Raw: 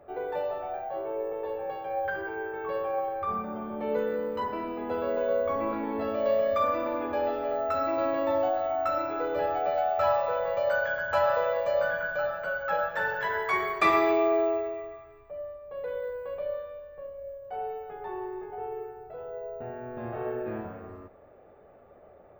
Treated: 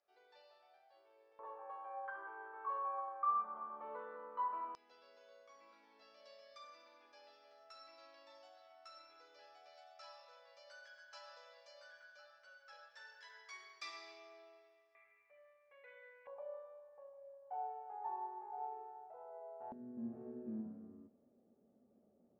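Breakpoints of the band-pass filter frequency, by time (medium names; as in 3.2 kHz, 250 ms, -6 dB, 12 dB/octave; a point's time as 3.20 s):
band-pass filter, Q 7.1
4.9 kHz
from 1.39 s 1.1 kHz
from 4.75 s 5.3 kHz
from 14.95 s 2.2 kHz
from 16.27 s 860 Hz
from 19.72 s 230 Hz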